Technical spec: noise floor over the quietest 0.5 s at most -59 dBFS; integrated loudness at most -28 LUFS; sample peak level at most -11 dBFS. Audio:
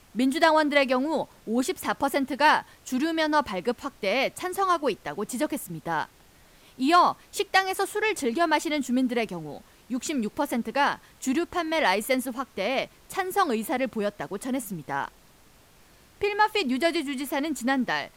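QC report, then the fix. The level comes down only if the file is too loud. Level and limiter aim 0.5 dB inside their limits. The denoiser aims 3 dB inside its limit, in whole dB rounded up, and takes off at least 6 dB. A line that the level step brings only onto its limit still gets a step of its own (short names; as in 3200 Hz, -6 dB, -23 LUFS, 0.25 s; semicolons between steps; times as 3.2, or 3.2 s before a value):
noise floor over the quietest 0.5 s -56 dBFS: fail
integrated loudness -26.0 LUFS: fail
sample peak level -9.5 dBFS: fail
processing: denoiser 6 dB, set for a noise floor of -56 dBFS; gain -2.5 dB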